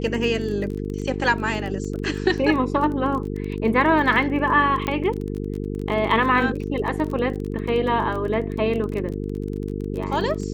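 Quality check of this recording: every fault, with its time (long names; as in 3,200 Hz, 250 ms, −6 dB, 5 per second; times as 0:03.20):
mains buzz 50 Hz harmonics 9 −28 dBFS
surface crackle 23 per second −28 dBFS
0:04.87: click −13 dBFS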